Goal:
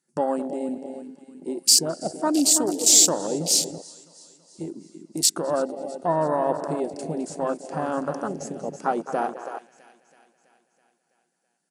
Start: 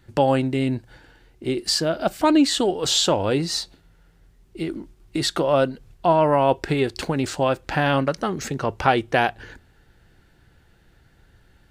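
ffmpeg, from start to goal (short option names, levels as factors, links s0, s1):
-filter_complex "[0:a]asplit=2[s0][s1];[s1]adelay=211,lowpass=f=4600:p=1,volume=0.282,asplit=2[s2][s3];[s3]adelay=211,lowpass=f=4600:p=1,volume=0.41,asplit=2[s4][s5];[s5]adelay=211,lowpass=f=4600:p=1,volume=0.41,asplit=2[s6][s7];[s7]adelay=211,lowpass=f=4600:p=1,volume=0.41[s8];[s2][s4][s6][s8]amix=inputs=4:normalize=0[s9];[s0][s9]amix=inputs=2:normalize=0,afftfilt=real='re*between(b*sr/4096,150,11000)':imag='im*between(b*sr/4096,150,11000)':win_size=4096:overlap=0.75,aexciter=amount=10.5:drive=2.2:freq=5200,asplit=2[s10][s11];[s11]aecho=0:1:328|656|984|1312|1640|1968|2296:0.335|0.198|0.117|0.0688|0.0406|0.0239|0.0141[s12];[s10][s12]amix=inputs=2:normalize=0,afwtdn=0.1,volume=0.531"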